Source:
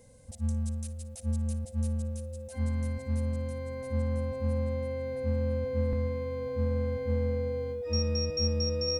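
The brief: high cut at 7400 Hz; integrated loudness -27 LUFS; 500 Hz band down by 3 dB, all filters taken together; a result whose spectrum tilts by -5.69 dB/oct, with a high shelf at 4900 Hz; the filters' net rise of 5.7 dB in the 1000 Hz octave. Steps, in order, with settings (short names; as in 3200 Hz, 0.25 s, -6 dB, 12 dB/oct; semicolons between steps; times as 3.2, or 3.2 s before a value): LPF 7400 Hz; bell 500 Hz -4.5 dB; bell 1000 Hz +7 dB; high shelf 4900 Hz +4.5 dB; gain +5.5 dB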